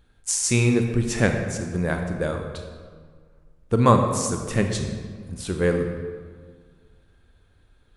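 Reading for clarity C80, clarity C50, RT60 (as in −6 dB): 6.5 dB, 5.5 dB, 1.7 s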